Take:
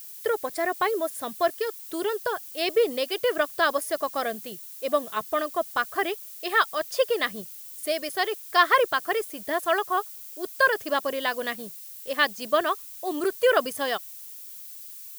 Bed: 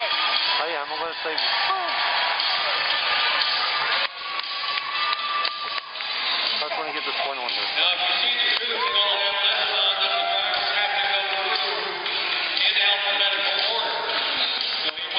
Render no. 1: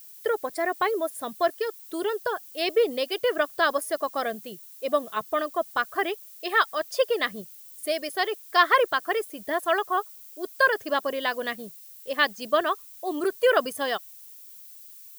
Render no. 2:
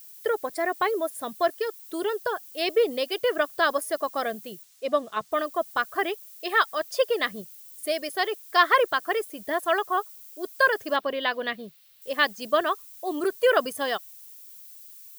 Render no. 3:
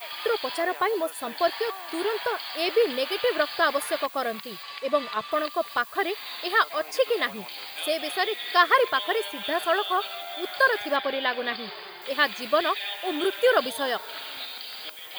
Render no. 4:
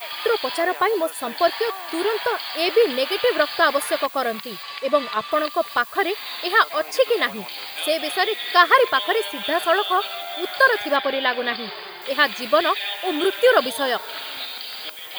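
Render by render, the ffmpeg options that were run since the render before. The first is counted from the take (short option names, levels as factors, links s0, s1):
-af "afftdn=nr=6:nf=-42"
-filter_complex "[0:a]asettb=1/sr,asplit=3[s0][s1][s2];[s0]atrim=end=4.634[s3];[s1]atrim=start=4.63:end=5.32,asetpts=PTS-STARTPTS,afade=t=in:d=0.004:c=qsin,afade=t=out:st=0.686:d=0.004:c=qsin,acrossover=split=8500[s4][s5];[s5]acompressor=threshold=0.00112:ratio=4:attack=1:release=60[s6];[s4][s6]amix=inputs=2:normalize=0[s7];[s2]atrim=start=5.316[s8];[s3][s7]acrossfade=d=0.004:c1=hsin:c2=qsin[s9];[s9][s8]acrossfade=d=0.004:c1=qsin:c2=hsin,asettb=1/sr,asplit=3[s10][s11][s12];[s10]atrim=end=10.964[s13];[s11]atrim=start=10.96:end=12.02,asetpts=PTS-STARTPTS,afade=t=in:d=0.004:c=qsin,afade=t=out:st=1.056:d=0.004:c=qsin,highshelf=f=5100:t=q:w=1.5:g=-10.5[s14];[s12]atrim=start=12.016[s15];[s13][s14]acrossfade=d=0.004:c1=hsin:c2=qsin[s16];[s16][s15]acrossfade=d=0.004:c1=qsin:c2=hsin"
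-filter_complex "[1:a]volume=0.211[s0];[0:a][s0]amix=inputs=2:normalize=0"
-af "volume=1.78,alimiter=limit=0.708:level=0:latency=1"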